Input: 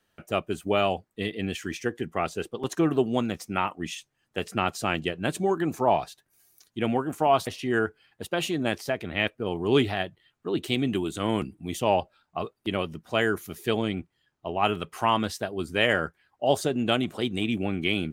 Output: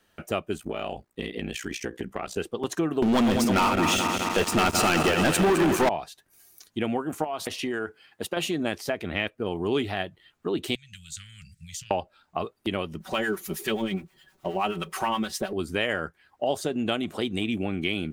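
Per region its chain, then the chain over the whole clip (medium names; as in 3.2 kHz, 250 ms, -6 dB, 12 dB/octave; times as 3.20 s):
0.57–2.37 s: compression 5:1, threshold -29 dBFS + ring modulator 30 Hz
3.02–5.89 s: backward echo that repeats 106 ms, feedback 81%, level -11 dB + waveshaping leveller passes 5
7.24–8.37 s: high-pass 180 Hz 6 dB/octave + compression 5:1, threshold -28 dBFS
10.75–11.91 s: high-order bell 5.8 kHz +10 dB 1.1 oct + compression 5:1, threshold -40 dBFS + inverse Chebyshev band-stop 250–1000 Hz
13.00–15.53 s: companding laws mixed up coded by mu + comb 5.3 ms, depth 72% + harmonic tremolo 9.5 Hz, crossover 810 Hz
whole clip: peaking EQ 130 Hz -9 dB 0.23 oct; compression 2.5:1, threshold -34 dBFS; trim +6.5 dB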